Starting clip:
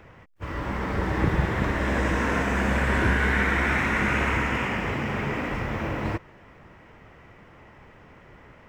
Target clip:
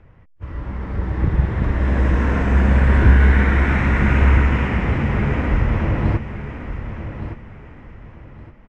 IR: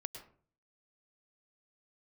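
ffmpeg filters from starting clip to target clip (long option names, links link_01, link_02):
-filter_complex "[0:a]aresample=32000,aresample=44100,dynaudnorm=framelen=390:gausssize=9:maxgain=11dB,aemphasis=mode=reproduction:type=bsi,asplit=2[link_01][link_02];[link_02]aecho=0:1:1166|2332|3498:0.299|0.0806|0.0218[link_03];[link_01][link_03]amix=inputs=2:normalize=0,volume=-7dB"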